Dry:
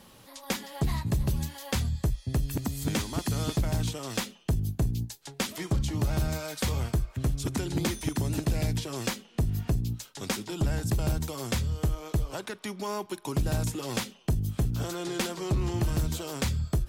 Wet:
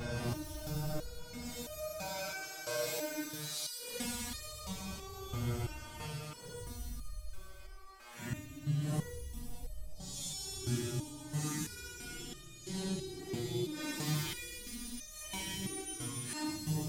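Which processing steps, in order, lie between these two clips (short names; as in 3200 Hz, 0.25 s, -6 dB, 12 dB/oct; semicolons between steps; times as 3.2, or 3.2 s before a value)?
spectral repair 7.32–7.66, 410–1100 Hz after; limiter -30.5 dBFS, peak gain reduction 11.5 dB; Paulstretch 8.1×, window 0.05 s, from 6.14; on a send: thin delay 0.129 s, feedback 75%, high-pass 3200 Hz, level -4 dB; on the sum: stepped resonator 3 Hz 120–610 Hz; gain +12.5 dB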